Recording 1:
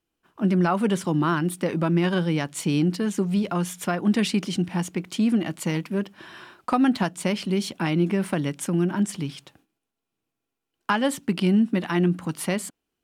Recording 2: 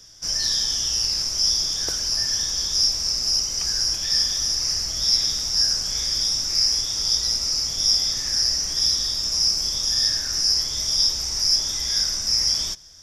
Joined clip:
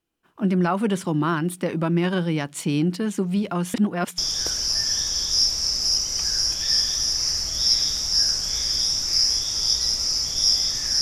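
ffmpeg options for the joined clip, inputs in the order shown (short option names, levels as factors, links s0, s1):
-filter_complex "[0:a]apad=whole_dur=11.01,atrim=end=11.01,asplit=2[s0][s1];[s0]atrim=end=3.742[s2];[s1]atrim=start=3.738:end=4.182,asetpts=PTS-STARTPTS,areverse[s3];[1:a]atrim=start=1.598:end=8.43[s4];[s2][s3]acrossfade=d=0.004:c1=hsin:c2=hsin[s5];[s5][s4]acrossfade=d=0.004:c1=hsin:c2=hsin"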